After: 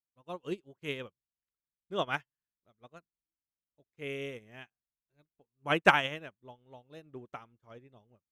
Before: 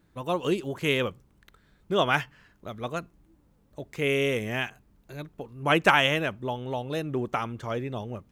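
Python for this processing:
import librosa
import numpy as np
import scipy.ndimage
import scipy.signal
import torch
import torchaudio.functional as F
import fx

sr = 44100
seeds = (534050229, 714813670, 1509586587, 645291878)

y = fx.high_shelf(x, sr, hz=10000.0, db=-8.0)
y = fx.upward_expand(y, sr, threshold_db=-46.0, expansion=2.5)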